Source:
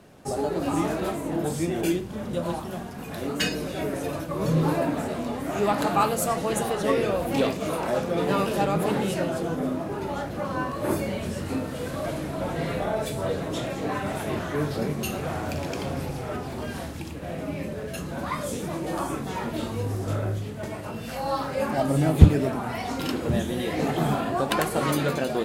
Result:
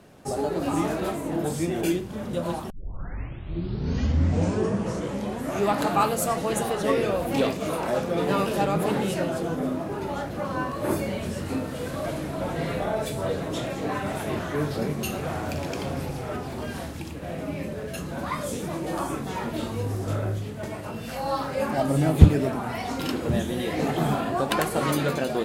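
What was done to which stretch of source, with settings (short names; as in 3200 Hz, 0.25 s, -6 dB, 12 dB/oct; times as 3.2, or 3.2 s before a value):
2.7 tape start 2.97 s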